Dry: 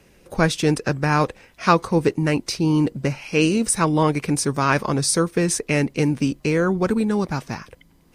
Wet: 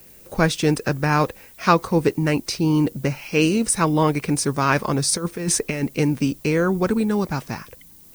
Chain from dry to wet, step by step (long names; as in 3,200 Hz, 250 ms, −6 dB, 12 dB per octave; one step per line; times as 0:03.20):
0:05.10–0:05.83: compressor whose output falls as the input rises −22 dBFS, ratio −0.5
background noise violet −48 dBFS